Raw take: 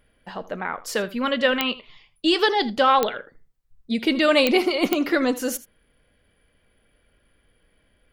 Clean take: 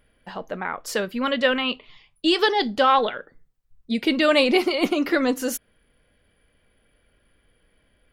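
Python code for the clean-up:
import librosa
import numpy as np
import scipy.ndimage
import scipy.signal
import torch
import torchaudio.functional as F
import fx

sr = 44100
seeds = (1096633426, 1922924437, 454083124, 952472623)

y = fx.fix_declick_ar(x, sr, threshold=10.0)
y = fx.fix_echo_inverse(y, sr, delay_ms=80, level_db=-17.5)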